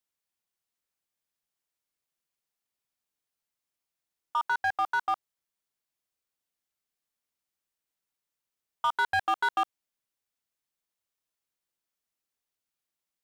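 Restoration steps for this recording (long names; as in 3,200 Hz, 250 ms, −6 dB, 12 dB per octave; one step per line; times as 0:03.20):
clipped peaks rebuilt −21.5 dBFS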